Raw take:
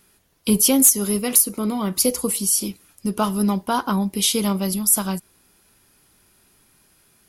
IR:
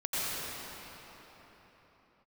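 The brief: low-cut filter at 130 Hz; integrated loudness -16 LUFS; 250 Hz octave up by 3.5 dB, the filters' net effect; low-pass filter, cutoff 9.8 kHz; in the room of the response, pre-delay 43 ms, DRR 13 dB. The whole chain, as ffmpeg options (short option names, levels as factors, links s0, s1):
-filter_complex "[0:a]highpass=130,lowpass=9800,equalizer=f=250:t=o:g=5,asplit=2[s0][s1];[1:a]atrim=start_sample=2205,adelay=43[s2];[s1][s2]afir=irnorm=-1:irlink=0,volume=0.0794[s3];[s0][s3]amix=inputs=2:normalize=0,volume=1.5"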